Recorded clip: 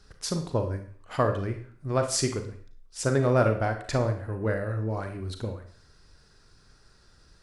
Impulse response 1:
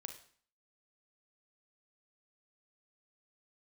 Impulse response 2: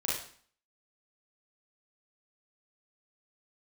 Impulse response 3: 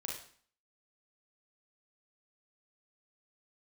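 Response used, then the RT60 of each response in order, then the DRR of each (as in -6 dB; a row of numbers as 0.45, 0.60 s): 1; 0.50, 0.50, 0.50 s; 6.0, -6.0, -2.0 dB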